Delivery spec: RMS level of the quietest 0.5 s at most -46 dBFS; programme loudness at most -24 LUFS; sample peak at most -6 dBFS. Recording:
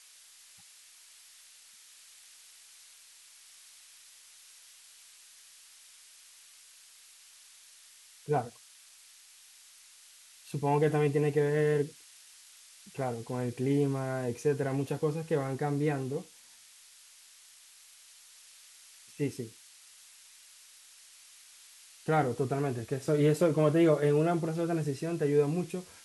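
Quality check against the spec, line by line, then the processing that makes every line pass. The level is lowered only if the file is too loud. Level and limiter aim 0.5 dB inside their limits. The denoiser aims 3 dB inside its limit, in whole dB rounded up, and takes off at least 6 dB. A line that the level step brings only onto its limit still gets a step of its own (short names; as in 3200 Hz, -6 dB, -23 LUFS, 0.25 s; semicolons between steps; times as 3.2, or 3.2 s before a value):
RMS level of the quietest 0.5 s -57 dBFS: OK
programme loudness -30.0 LUFS: OK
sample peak -13.5 dBFS: OK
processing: none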